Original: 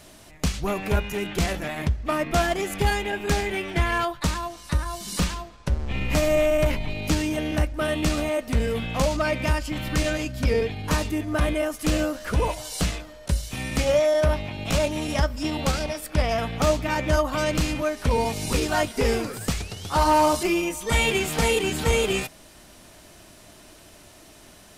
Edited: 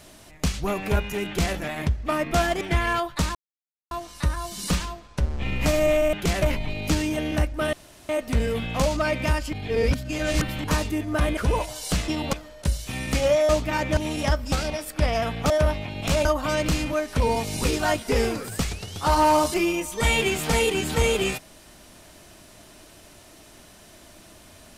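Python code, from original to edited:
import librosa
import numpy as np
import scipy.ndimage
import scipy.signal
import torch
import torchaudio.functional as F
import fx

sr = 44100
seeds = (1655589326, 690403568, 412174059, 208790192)

y = fx.edit(x, sr, fx.duplicate(start_s=1.26, length_s=0.29, to_s=6.62),
    fx.cut(start_s=2.61, length_s=1.05),
    fx.insert_silence(at_s=4.4, length_s=0.56),
    fx.room_tone_fill(start_s=7.93, length_s=0.36),
    fx.reverse_span(start_s=9.73, length_s=1.11),
    fx.cut(start_s=11.57, length_s=0.69),
    fx.swap(start_s=14.13, length_s=0.75, other_s=16.66, other_length_s=0.48),
    fx.move(start_s=15.43, length_s=0.25, to_s=12.97), tone=tone)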